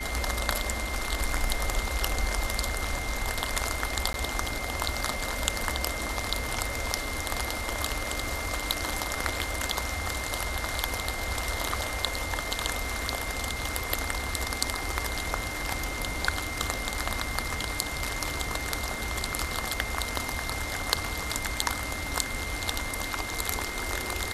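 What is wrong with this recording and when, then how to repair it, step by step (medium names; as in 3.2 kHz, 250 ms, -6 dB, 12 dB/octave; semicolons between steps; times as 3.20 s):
whine 2.1 kHz -36 dBFS
4.13–4.14 s: dropout 12 ms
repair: band-stop 2.1 kHz, Q 30; interpolate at 4.13 s, 12 ms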